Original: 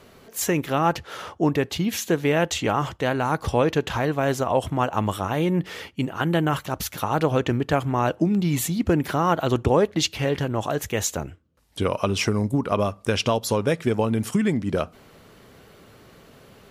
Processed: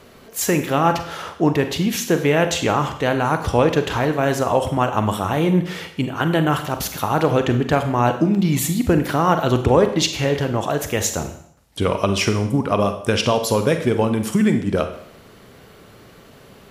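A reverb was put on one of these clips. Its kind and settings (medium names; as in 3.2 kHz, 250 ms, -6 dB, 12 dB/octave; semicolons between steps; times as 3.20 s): Schroeder reverb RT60 0.66 s, combs from 33 ms, DRR 7.5 dB; trim +3.5 dB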